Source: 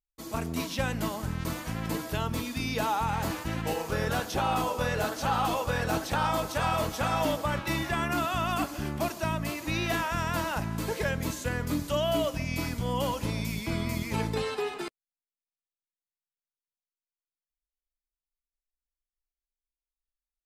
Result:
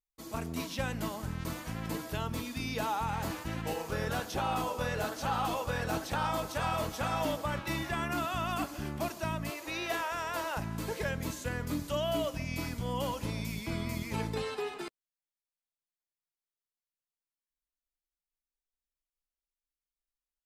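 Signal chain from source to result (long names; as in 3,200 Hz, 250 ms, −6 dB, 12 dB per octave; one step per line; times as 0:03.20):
0:09.50–0:10.57: low shelf with overshoot 290 Hz −12 dB, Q 1.5
level −4.5 dB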